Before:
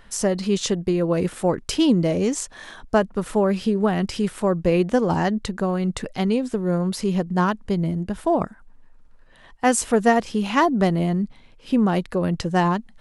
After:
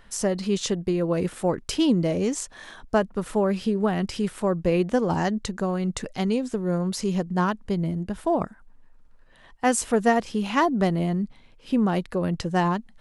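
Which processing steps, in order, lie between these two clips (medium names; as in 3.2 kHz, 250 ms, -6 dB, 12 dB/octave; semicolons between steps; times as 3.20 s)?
5.16–7.29 s: dynamic bell 6.5 kHz, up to +6 dB, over -50 dBFS, Q 1.7; trim -3 dB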